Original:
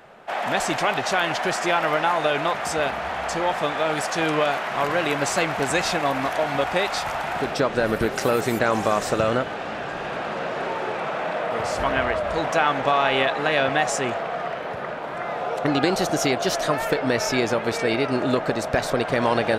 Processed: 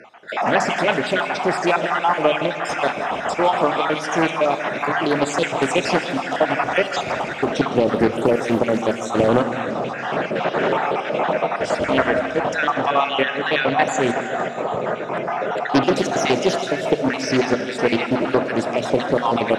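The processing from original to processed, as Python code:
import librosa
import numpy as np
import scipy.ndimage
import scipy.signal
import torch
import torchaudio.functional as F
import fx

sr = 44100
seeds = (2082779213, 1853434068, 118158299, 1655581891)

p1 = fx.spec_dropout(x, sr, seeds[0], share_pct=49)
p2 = fx.bandpass_edges(p1, sr, low_hz=180.0, high_hz=6800.0)
p3 = fx.low_shelf(p2, sr, hz=280.0, db=9.5)
p4 = fx.hum_notches(p3, sr, base_hz=50, count=5)
p5 = fx.rider(p4, sr, range_db=4, speed_s=2.0)
p6 = fx.notch(p5, sr, hz=4400.0, q=6.1)
p7 = p6 + fx.echo_feedback(p6, sr, ms=160, feedback_pct=59, wet_db=-13.5, dry=0)
p8 = fx.rev_schroeder(p7, sr, rt60_s=2.9, comb_ms=26, drr_db=10.5)
p9 = fx.doppler_dist(p8, sr, depth_ms=0.4)
y = p9 * librosa.db_to_amplitude(4.0)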